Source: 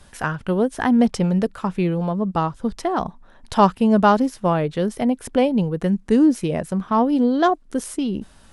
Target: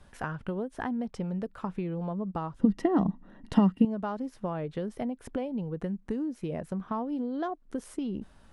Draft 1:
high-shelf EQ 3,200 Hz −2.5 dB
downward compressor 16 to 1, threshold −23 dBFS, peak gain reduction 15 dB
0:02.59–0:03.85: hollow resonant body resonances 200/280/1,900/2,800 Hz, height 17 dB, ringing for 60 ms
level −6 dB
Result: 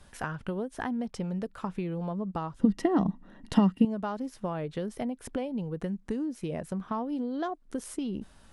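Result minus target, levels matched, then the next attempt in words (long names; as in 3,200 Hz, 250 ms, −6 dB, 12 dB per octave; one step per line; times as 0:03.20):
8,000 Hz band +7.0 dB
high-shelf EQ 3,200 Hz −10.5 dB
downward compressor 16 to 1, threshold −23 dBFS, peak gain reduction 14.5 dB
0:02.59–0:03.85: hollow resonant body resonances 200/280/1,900/2,800 Hz, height 17 dB, ringing for 60 ms
level −6 dB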